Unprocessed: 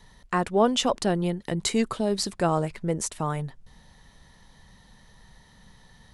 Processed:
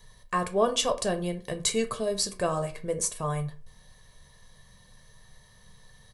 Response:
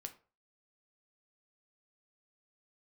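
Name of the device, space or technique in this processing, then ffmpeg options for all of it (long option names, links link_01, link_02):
microphone above a desk: -filter_complex "[0:a]aecho=1:1:1.8:0.63[link_01];[1:a]atrim=start_sample=2205[link_02];[link_01][link_02]afir=irnorm=-1:irlink=0,highshelf=frequency=7900:gain=11.5"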